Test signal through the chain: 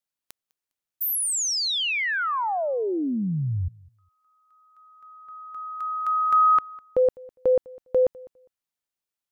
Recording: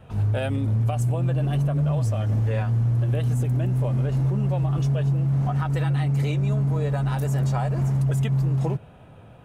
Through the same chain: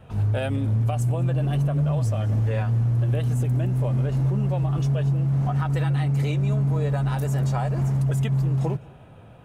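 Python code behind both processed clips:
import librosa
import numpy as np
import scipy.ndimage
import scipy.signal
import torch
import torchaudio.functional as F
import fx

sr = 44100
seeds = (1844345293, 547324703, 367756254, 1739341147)

y = fx.echo_feedback(x, sr, ms=203, feedback_pct=19, wet_db=-23.5)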